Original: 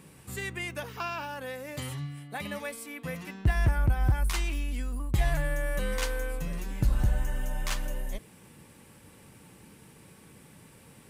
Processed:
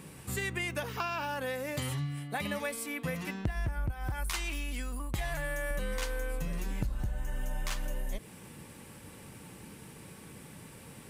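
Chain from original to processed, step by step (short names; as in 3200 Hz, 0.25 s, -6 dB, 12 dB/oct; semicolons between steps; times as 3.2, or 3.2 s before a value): 3.91–5.71 low shelf 410 Hz -8.5 dB; compressor 8:1, threshold -34 dBFS, peak gain reduction 15 dB; gain +4 dB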